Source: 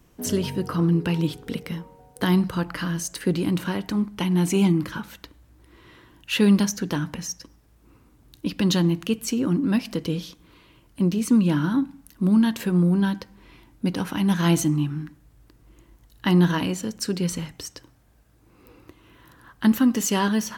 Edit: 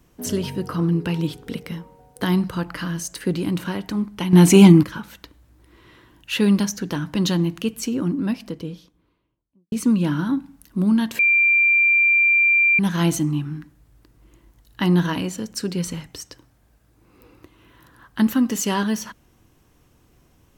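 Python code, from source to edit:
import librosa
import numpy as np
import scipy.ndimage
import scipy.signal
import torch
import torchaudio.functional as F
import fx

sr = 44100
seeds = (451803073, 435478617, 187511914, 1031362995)

y = fx.studio_fade_out(x, sr, start_s=9.22, length_s=1.95)
y = fx.edit(y, sr, fx.clip_gain(start_s=4.33, length_s=0.5, db=10.0),
    fx.cut(start_s=7.15, length_s=1.45),
    fx.bleep(start_s=12.64, length_s=1.6, hz=2370.0, db=-13.0), tone=tone)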